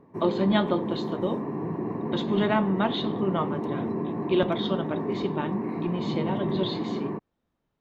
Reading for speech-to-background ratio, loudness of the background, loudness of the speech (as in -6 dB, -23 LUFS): 2.0 dB, -31.0 LUFS, -29.0 LUFS